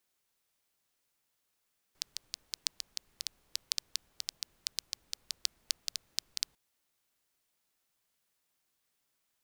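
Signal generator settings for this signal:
rain-like ticks over hiss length 4.60 s, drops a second 6, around 4,700 Hz, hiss −29 dB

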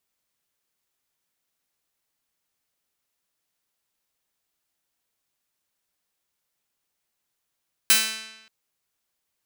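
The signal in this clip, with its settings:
Karplus-Strong string A3, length 0.58 s, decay 1.02 s, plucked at 0.47, bright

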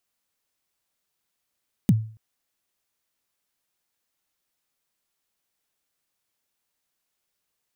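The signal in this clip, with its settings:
synth kick length 0.28 s, from 240 Hz, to 110 Hz, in 38 ms, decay 0.43 s, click on, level −10.5 dB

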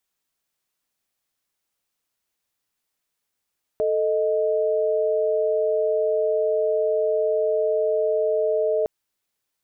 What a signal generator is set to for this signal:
held notes A4/D#5 sine, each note −21.5 dBFS 5.06 s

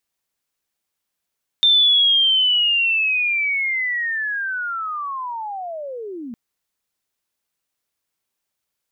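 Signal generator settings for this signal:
glide linear 3,600 Hz → 220 Hz −10.5 dBFS → −29 dBFS 4.71 s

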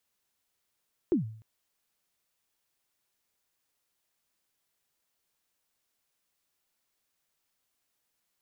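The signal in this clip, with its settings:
synth kick length 0.30 s, from 390 Hz, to 110 Hz, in 123 ms, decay 0.55 s, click off, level −19 dB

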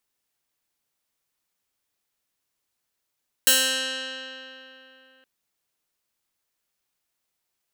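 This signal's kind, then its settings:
Karplus-Strong string C4, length 1.77 s, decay 3.34 s, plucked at 0.22, bright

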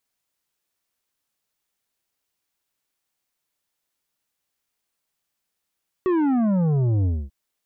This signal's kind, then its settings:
bass drop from 380 Hz, over 1.24 s, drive 9 dB, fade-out 0.25 s, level −18.5 dB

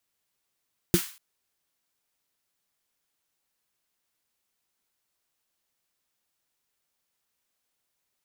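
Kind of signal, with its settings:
synth snare length 0.24 s, tones 180 Hz, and 340 Hz, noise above 1,100 Hz, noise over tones −10 dB, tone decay 0.09 s, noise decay 0.42 s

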